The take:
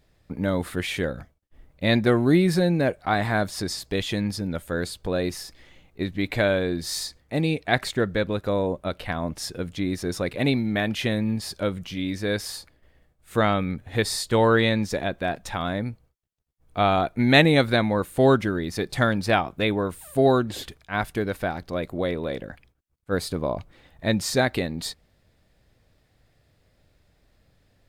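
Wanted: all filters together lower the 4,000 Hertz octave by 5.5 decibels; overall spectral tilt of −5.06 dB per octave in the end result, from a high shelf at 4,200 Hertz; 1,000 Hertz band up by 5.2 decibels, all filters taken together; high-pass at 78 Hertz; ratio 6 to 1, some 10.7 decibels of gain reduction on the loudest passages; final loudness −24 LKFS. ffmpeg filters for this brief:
ffmpeg -i in.wav -af "highpass=78,equalizer=frequency=1000:width_type=o:gain=8,equalizer=frequency=4000:width_type=o:gain=-4,highshelf=frequency=4200:gain=-5.5,acompressor=threshold=-23dB:ratio=6,volume=5.5dB" out.wav

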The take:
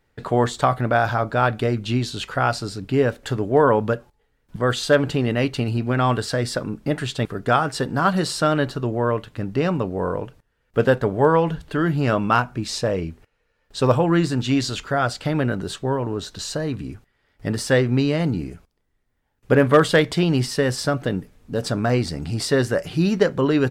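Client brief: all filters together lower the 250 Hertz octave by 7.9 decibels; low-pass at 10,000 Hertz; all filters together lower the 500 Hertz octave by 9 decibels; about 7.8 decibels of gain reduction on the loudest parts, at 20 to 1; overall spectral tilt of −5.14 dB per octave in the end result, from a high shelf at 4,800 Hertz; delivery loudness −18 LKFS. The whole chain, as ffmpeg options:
ffmpeg -i in.wav -af "lowpass=10000,equalizer=frequency=250:width_type=o:gain=-8.5,equalizer=frequency=500:width_type=o:gain=-8.5,highshelf=frequency=4800:gain=-5,acompressor=threshold=-23dB:ratio=20,volume=12dB" out.wav

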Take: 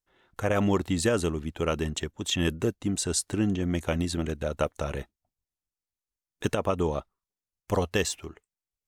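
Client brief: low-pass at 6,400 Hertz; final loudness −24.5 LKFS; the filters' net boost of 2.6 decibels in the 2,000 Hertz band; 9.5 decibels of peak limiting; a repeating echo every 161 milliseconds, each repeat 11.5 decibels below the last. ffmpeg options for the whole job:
ffmpeg -i in.wav -af "lowpass=6400,equalizer=frequency=2000:width_type=o:gain=3.5,alimiter=limit=-19dB:level=0:latency=1,aecho=1:1:161|322|483:0.266|0.0718|0.0194,volume=6.5dB" out.wav

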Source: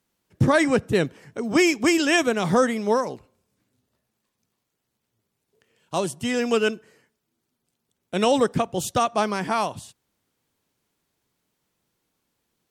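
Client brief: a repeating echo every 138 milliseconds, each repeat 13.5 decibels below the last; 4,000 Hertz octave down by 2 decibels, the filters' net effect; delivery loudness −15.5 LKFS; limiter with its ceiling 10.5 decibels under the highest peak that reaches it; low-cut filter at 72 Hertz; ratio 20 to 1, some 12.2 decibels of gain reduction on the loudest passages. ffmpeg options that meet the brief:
ffmpeg -i in.wav -af "highpass=72,equalizer=frequency=4000:width_type=o:gain=-3,acompressor=threshold=-26dB:ratio=20,alimiter=limit=-24dB:level=0:latency=1,aecho=1:1:138|276:0.211|0.0444,volume=19dB" out.wav

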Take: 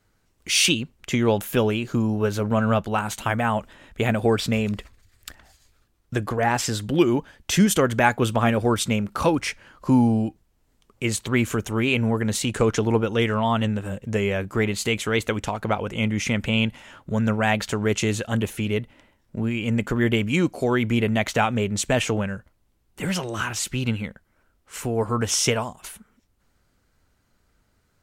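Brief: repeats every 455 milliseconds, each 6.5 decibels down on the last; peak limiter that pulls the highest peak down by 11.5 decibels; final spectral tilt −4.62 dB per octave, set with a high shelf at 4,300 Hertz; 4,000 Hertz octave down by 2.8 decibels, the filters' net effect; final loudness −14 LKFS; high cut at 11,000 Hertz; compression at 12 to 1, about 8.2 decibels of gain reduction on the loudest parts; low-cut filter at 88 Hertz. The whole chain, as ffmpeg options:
ffmpeg -i in.wav -af "highpass=88,lowpass=11000,equalizer=frequency=4000:width_type=o:gain=-7,highshelf=frequency=4300:gain=5,acompressor=threshold=-21dB:ratio=12,alimiter=limit=-21dB:level=0:latency=1,aecho=1:1:455|910|1365|1820|2275|2730:0.473|0.222|0.105|0.0491|0.0231|0.0109,volume=16.5dB" out.wav

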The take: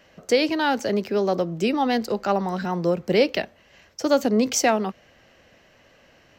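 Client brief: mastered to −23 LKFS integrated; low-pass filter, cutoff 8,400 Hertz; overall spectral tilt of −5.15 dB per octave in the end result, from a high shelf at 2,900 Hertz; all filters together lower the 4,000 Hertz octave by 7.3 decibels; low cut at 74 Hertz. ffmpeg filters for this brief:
ffmpeg -i in.wav -af "highpass=74,lowpass=8400,highshelf=frequency=2900:gain=-8,equalizer=frequency=4000:width_type=o:gain=-3,volume=0.5dB" out.wav

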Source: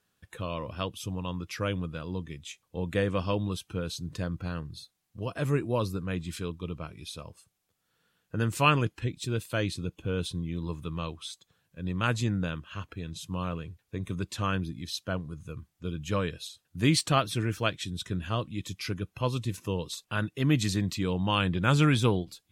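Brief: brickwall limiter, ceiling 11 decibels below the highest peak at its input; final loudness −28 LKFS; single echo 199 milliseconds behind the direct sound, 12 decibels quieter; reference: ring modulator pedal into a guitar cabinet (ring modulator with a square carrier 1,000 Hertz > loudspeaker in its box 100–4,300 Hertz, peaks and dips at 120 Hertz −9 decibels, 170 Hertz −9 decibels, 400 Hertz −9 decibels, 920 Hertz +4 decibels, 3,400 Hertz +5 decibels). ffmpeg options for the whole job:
ffmpeg -i in.wav -af "alimiter=limit=-20dB:level=0:latency=1,aecho=1:1:199:0.251,aeval=exprs='val(0)*sgn(sin(2*PI*1000*n/s))':channel_layout=same,highpass=100,equalizer=frequency=120:width_type=q:width=4:gain=-9,equalizer=frequency=170:width_type=q:width=4:gain=-9,equalizer=frequency=400:width_type=q:width=4:gain=-9,equalizer=frequency=920:width_type=q:width=4:gain=4,equalizer=frequency=3400:width_type=q:width=4:gain=5,lowpass=frequency=4300:width=0.5412,lowpass=frequency=4300:width=1.3066,volume=2.5dB" out.wav

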